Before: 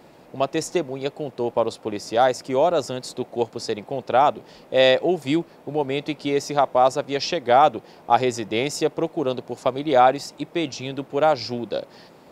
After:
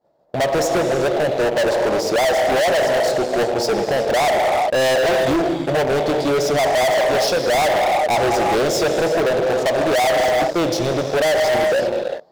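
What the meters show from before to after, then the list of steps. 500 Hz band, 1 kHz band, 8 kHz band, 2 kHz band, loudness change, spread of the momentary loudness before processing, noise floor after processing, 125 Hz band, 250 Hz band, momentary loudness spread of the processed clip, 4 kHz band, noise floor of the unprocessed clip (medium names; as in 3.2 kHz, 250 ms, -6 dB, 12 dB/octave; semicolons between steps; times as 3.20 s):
+6.0 dB, +2.0 dB, +8.5 dB, +9.0 dB, +4.5 dB, 12 LU, -27 dBFS, +5.0 dB, +3.0 dB, 3 LU, +5.5 dB, -50 dBFS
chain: expander -36 dBFS; fifteen-band graphic EQ 250 Hz -4 dB, 630 Hz +12 dB, 2.5 kHz -12 dB, 10 kHz -11 dB; in parallel at -2 dB: compression, threshold -22 dBFS, peak gain reduction 18 dB; on the sum: gated-style reverb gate 420 ms flat, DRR 6.5 dB; waveshaping leveller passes 2; overload inside the chain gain 15.5 dB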